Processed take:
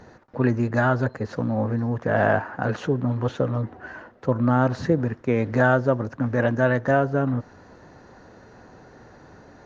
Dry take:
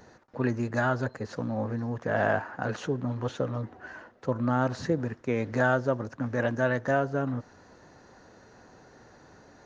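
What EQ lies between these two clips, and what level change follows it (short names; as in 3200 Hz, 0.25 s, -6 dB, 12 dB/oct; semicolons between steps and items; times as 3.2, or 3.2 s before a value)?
LPF 3200 Hz 6 dB/oct; low shelf 200 Hz +3 dB; +5.5 dB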